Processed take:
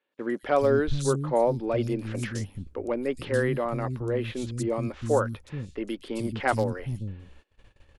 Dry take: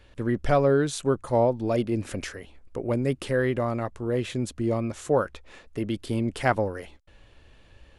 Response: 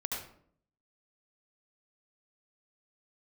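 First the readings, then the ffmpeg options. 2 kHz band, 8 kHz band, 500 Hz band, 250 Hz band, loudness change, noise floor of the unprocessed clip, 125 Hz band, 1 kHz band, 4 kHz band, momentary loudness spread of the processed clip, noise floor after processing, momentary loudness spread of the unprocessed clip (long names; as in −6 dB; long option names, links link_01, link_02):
−0.5 dB, −0.5 dB, −1.0 dB, −2.5 dB, −1.5 dB, −55 dBFS, −0.5 dB, −1.0 dB, −2.5 dB, 11 LU, −64 dBFS, 12 LU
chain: -filter_complex "[0:a]bandreject=frequency=660:width=12,volume=12dB,asoftclip=hard,volume=-12dB,acrossover=split=230|4000[link_01][link_02][link_03];[link_03]adelay=120[link_04];[link_01]adelay=430[link_05];[link_05][link_02][link_04]amix=inputs=3:normalize=0,agate=range=-20dB:threshold=-51dB:ratio=16:detection=peak"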